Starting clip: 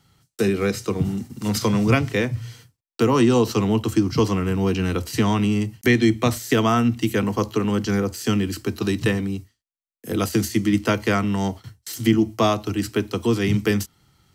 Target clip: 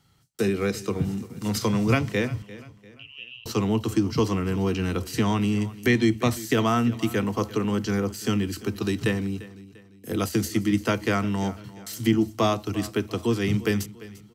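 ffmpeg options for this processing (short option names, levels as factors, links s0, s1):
-filter_complex "[0:a]asettb=1/sr,asplit=3[s0][s1][s2];[s0]atrim=end=2.424[s3];[s1]atrim=start=2.42:end=3.46,asetpts=PTS-STARTPTS,afade=t=in:d=0.004:c=qsin,afade=t=out:st=1.036:d=0.004:c=qsin,asuperpass=centerf=2800:order=4:qfactor=6.3[s4];[s2]atrim=start=3.456[s5];[s3][s4]acrossfade=d=0.004:c1=hsin:c2=qsin[s6];[s6][s5]acrossfade=d=0.004:c1=qsin:c2=hsin,aecho=1:1:346|692|1038:0.126|0.0504|0.0201,volume=0.668"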